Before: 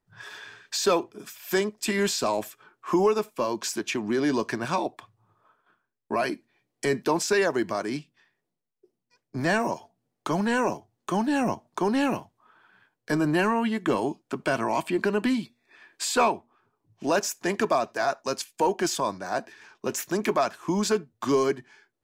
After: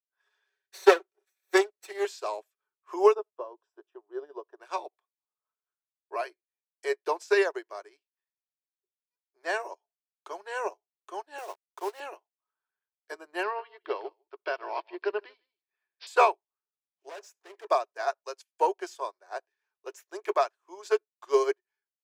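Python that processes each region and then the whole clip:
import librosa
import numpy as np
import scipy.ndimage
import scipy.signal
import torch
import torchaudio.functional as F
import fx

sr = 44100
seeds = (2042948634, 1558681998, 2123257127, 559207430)

y = fx.chain(x, sr, fx.lower_of_two(delay_ms=0.49),
    fx.comb(ms=5.3, depth=0.54), at=(0.46, 2.05))
y = fx.chain(y, sr, fx.moving_average(points=20),
    fx.band_squash(depth_pct=40), at=(3.15, 4.6))
y = fx.chain(y, sr, fx.highpass(hz=340.0, slope=24),
    fx.quant_dither(seeds[0], bits=6, dither='none'), at=(11.38, 12.0))
y = fx.chain(y, sr, fx.resample_bad(factor=4, down='none', up='filtered'),
    fx.echo_single(ms=151, db=-14.0), at=(13.43, 16.07))
y = fx.chain(y, sr, fx.law_mismatch(coded='mu'),
    fx.high_shelf(hz=6000.0, db=-4.5),
    fx.clip_hard(threshold_db=-27.0), at=(17.09, 17.65))
y = scipy.signal.sosfilt(scipy.signal.ellip(4, 1.0, 40, 380.0, 'highpass', fs=sr, output='sos'), y)
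y = fx.high_shelf(y, sr, hz=7900.0, db=-4.0)
y = fx.upward_expand(y, sr, threshold_db=-43.0, expansion=2.5)
y = F.gain(torch.from_numpy(y), 6.0).numpy()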